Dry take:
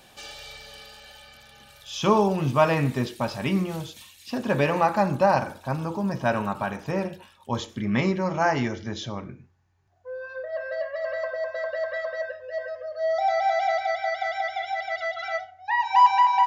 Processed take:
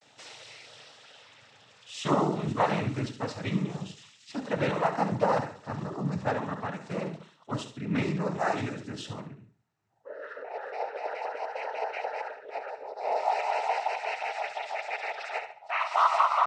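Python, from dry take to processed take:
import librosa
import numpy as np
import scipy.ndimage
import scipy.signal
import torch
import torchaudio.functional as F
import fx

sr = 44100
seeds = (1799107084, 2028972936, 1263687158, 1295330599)

y = fx.room_flutter(x, sr, wall_m=11.9, rt60_s=0.42)
y = fx.noise_vocoder(y, sr, seeds[0], bands=12)
y = fx.vibrato(y, sr, rate_hz=0.45, depth_cents=41.0)
y = y * 10.0 ** (-5.5 / 20.0)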